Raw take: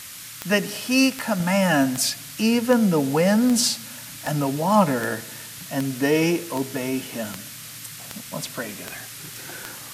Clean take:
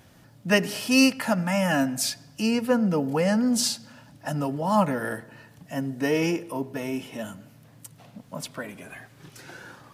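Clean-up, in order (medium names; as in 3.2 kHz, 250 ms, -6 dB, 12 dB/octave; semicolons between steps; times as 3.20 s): de-click; noise print and reduce 14 dB; trim 0 dB, from 1.40 s -4 dB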